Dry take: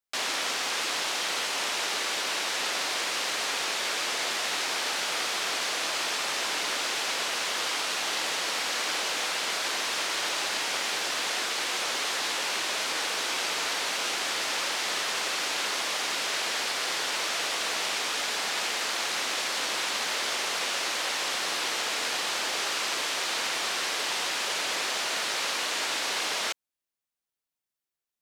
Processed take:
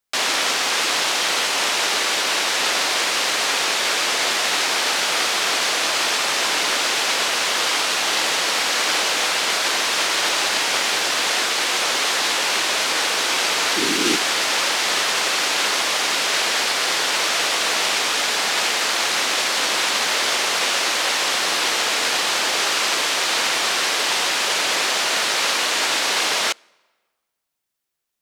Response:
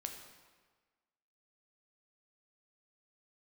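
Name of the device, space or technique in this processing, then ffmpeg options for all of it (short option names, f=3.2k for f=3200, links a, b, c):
keyed gated reverb: -filter_complex "[0:a]asettb=1/sr,asplit=3[a][b][c];[a]atrim=end=13.764[d];[b]atrim=start=13.76:end=14.17,asetpts=PTS-STARTPTS,afade=t=in:d=0.004:c=qsin,afade=t=out:st=0.406:d=0.004:c=qsin,lowshelf=f=440:t=q:w=3:g=9.5[e];[c]atrim=start=14.166[f];[d][e]acrossfade=d=0.004:c1=hsin:c2=qsin[g];[g][f]acrossfade=d=0.004:c1=qsin:c2=hsin,asplit=3[h][i][j];[1:a]atrim=start_sample=2205[k];[i][k]afir=irnorm=-1:irlink=0[l];[j]apad=whole_len=1244390[m];[l][m]sidechaingate=range=-24dB:threshold=-26dB:ratio=16:detection=peak,volume=3dB[n];[h][n]amix=inputs=2:normalize=0,volume=8.5dB"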